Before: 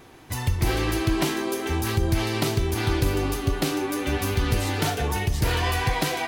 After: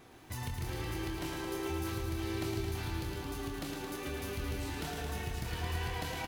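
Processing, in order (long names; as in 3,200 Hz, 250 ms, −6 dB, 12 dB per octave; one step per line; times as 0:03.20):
downward compressor 5 to 1, threshold −30 dBFS, peak gain reduction 12 dB
double-tracking delay 25 ms −6.5 dB
feedback echo at a low word length 110 ms, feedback 80%, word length 9 bits, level −5 dB
level −8.5 dB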